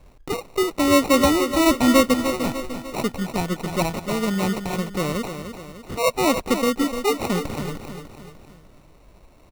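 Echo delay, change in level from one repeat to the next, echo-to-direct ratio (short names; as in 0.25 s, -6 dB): 0.299 s, -6.0 dB, -8.0 dB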